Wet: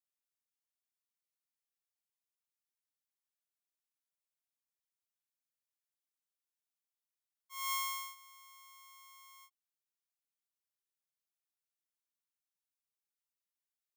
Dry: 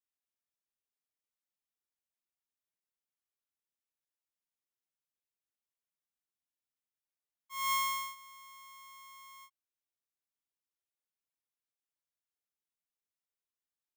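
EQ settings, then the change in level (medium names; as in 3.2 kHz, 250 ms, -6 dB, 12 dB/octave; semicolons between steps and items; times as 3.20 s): high-pass 640 Hz 24 dB/octave; treble shelf 4 kHz +6 dB; -6.5 dB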